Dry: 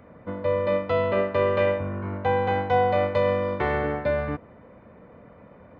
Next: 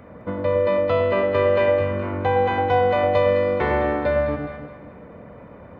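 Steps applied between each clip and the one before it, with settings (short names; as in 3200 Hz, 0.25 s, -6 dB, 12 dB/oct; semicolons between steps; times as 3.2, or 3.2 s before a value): echo with dull and thin repeats by turns 0.105 s, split 920 Hz, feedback 58%, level -4 dB; in parallel at -1 dB: compressor, threshold -29 dBFS, peak gain reduction 12.5 dB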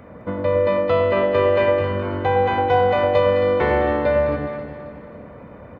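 feedback echo 0.269 s, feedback 46%, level -11 dB; gain +1.5 dB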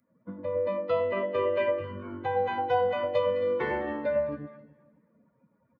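per-bin expansion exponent 2; HPF 140 Hz 12 dB/oct; gain -6.5 dB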